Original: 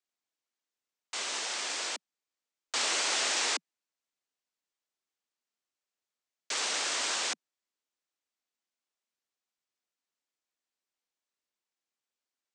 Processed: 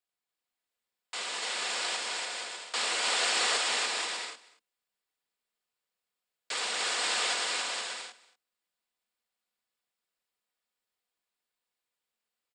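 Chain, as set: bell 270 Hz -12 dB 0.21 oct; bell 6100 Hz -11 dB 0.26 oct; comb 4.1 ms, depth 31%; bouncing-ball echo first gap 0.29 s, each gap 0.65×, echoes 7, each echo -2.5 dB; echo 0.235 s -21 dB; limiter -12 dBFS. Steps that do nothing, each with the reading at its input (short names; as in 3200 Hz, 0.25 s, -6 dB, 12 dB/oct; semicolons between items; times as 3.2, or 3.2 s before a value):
limiter -12 dBFS: input peak -15.0 dBFS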